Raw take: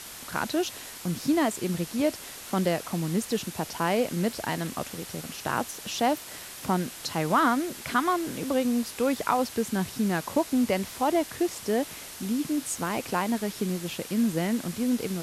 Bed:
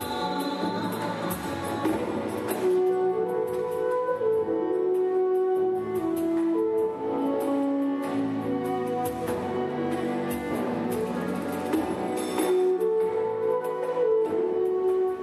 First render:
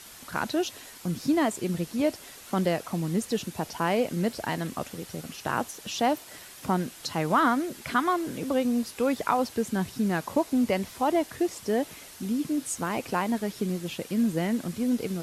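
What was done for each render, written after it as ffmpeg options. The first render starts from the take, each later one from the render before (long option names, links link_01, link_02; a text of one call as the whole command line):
ffmpeg -i in.wav -af "afftdn=noise_reduction=6:noise_floor=-42" out.wav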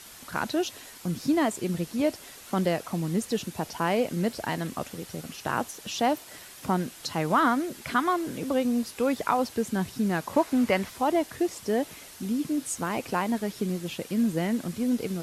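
ffmpeg -i in.wav -filter_complex "[0:a]asettb=1/sr,asplit=3[link_01][link_02][link_03];[link_01]atrim=end=10.334[link_04];[link_02]atrim=start=10.33:end=10.9,asetpts=PTS-STARTPTS,afade=type=in:duration=0.004:curve=qsin,afade=type=out:start_time=0.566:duration=0.004:curve=qsin,equalizer=frequency=1500:width=0.81:gain=7.5[link_05];[link_03]atrim=start=10.896[link_06];[link_04][link_05]acrossfade=duration=0.004:curve1=hsin:curve2=qsin[link_07];[link_07][link_06]acrossfade=duration=0.004:curve1=qsin:curve2=hsin" out.wav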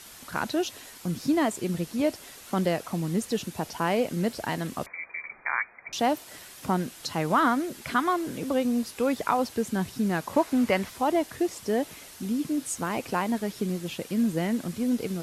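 ffmpeg -i in.wav -filter_complex "[0:a]asettb=1/sr,asplit=3[link_01][link_02][link_03];[link_01]atrim=end=4.864[link_04];[link_02]atrim=start=4.86:end=5.93,asetpts=PTS-STARTPTS,afade=type=in:duration=0.004:curve=qsin,afade=type=out:start_time=1.066:duration=0.004:curve=qsin,lowpass=frequency=2100:width_type=q:width=0.5098,lowpass=frequency=2100:width_type=q:width=0.6013,lowpass=frequency=2100:width_type=q:width=0.9,lowpass=frequency=2100:width_type=q:width=2.563,afreqshift=-2500[link_05];[link_03]atrim=start=5.926[link_06];[link_04][link_05]acrossfade=duration=0.004:curve1=hsin:curve2=qsin[link_07];[link_07][link_06]acrossfade=duration=0.004:curve1=qsin:curve2=hsin" out.wav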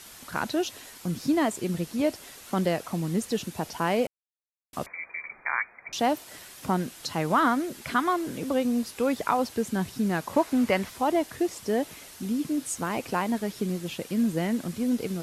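ffmpeg -i in.wav -filter_complex "[0:a]asplit=3[link_01][link_02][link_03];[link_01]atrim=end=4.07,asetpts=PTS-STARTPTS,afade=type=out:start_time=4.066:duration=0.004:curve=hsin[link_04];[link_02]atrim=start=4.07:end=4.73,asetpts=PTS-STARTPTS,volume=0[link_05];[link_03]atrim=start=4.73,asetpts=PTS-STARTPTS,afade=type=in:duration=0.004:curve=hsin[link_06];[link_04][link_05][link_06]concat=n=3:v=0:a=1" out.wav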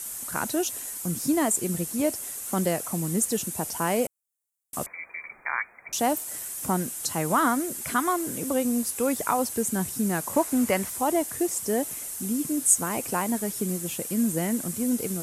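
ffmpeg -i in.wav -af "highshelf=frequency=6000:width_type=q:width=1.5:gain=12.5" out.wav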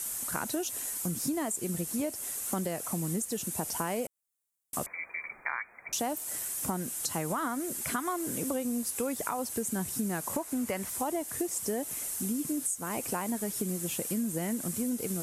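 ffmpeg -i in.wav -af "alimiter=limit=-14.5dB:level=0:latency=1:release=492,acompressor=threshold=-29dB:ratio=6" out.wav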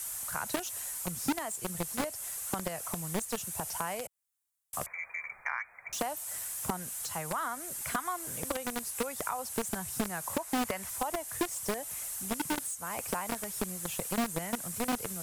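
ffmpeg -i in.wav -filter_complex "[0:a]acrossover=split=160|510|2000[link_01][link_02][link_03][link_04];[link_02]acrusher=bits=4:mix=0:aa=0.000001[link_05];[link_04]asoftclip=type=tanh:threshold=-33dB[link_06];[link_01][link_05][link_03][link_06]amix=inputs=4:normalize=0" out.wav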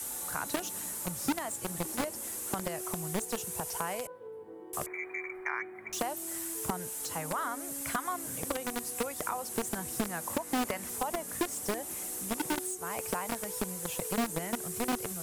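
ffmpeg -i in.wav -i bed.wav -filter_complex "[1:a]volume=-21dB[link_01];[0:a][link_01]amix=inputs=2:normalize=0" out.wav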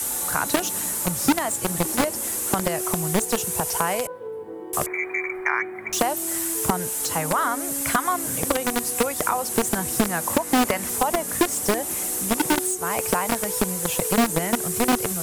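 ffmpeg -i in.wav -af "volume=11.5dB" out.wav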